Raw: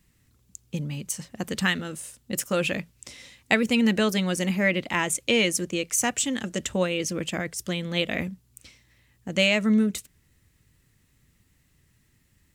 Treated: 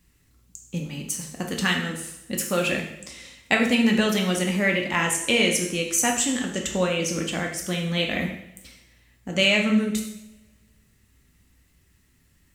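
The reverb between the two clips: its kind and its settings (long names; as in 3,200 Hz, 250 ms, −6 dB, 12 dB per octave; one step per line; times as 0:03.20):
coupled-rooms reverb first 0.72 s, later 1.8 s, from −23 dB, DRR 0.5 dB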